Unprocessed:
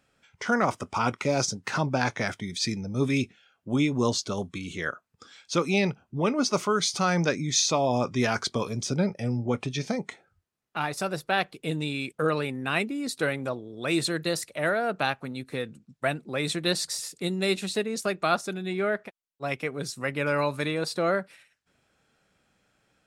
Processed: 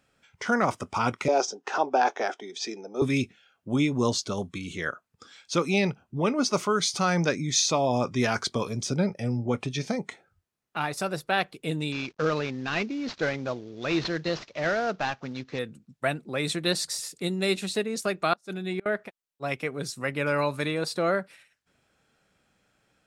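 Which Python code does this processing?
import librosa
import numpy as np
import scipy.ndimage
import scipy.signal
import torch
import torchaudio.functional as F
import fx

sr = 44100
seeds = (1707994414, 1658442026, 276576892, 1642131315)

y = fx.cabinet(x, sr, low_hz=320.0, low_slope=24, high_hz=6200.0, hz=(400.0, 760.0, 2100.0, 4300.0), db=(7, 10, -8, -9), at=(1.28, 3.02))
y = fx.cvsd(y, sr, bps=32000, at=(11.92, 15.59))
y = fx.gate_flip(y, sr, shuts_db=-19.0, range_db=-30, at=(18.33, 18.86))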